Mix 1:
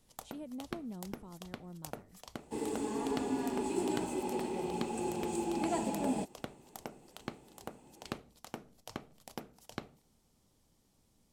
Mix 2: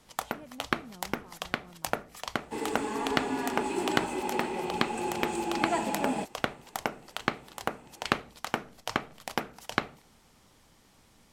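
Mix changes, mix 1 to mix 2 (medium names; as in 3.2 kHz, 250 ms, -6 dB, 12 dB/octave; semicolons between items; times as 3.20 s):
speech -6.0 dB; first sound +8.0 dB; master: add peaking EQ 1.7 kHz +11.5 dB 2.4 oct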